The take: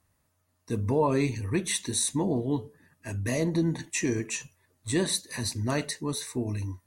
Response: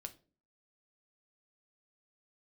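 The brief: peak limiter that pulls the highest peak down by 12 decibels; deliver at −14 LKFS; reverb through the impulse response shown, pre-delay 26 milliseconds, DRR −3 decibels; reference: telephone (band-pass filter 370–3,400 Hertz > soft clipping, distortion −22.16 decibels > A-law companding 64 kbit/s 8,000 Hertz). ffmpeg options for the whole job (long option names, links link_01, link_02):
-filter_complex "[0:a]alimiter=level_in=1dB:limit=-24dB:level=0:latency=1,volume=-1dB,asplit=2[link_01][link_02];[1:a]atrim=start_sample=2205,adelay=26[link_03];[link_02][link_03]afir=irnorm=-1:irlink=0,volume=7.5dB[link_04];[link_01][link_04]amix=inputs=2:normalize=0,highpass=370,lowpass=3400,asoftclip=threshold=-23.5dB,volume=23dB" -ar 8000 -c:a pcm_alaw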